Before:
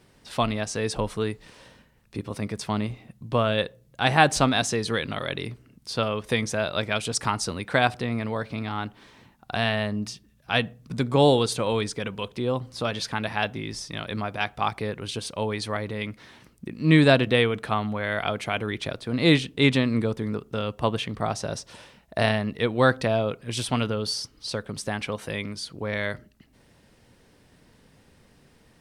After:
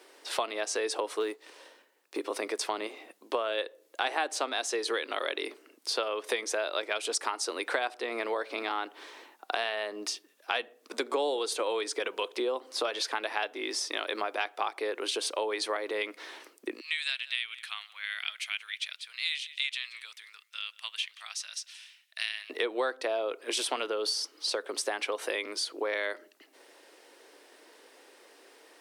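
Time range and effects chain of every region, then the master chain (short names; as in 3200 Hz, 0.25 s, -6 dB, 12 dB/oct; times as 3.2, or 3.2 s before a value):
1.2–2.19 G.711 law mismatch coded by A + low shelf 150 Hz +10.5 dB
16.8–22.5 ladder high-pass 1900 Hz, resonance 25% + echo 0.178 s -22.5 dB
whole clip: steep high-pass 320 Hz 48 dB/oct; compressor 6:1, threshold -33 dBFS; gain +5 dB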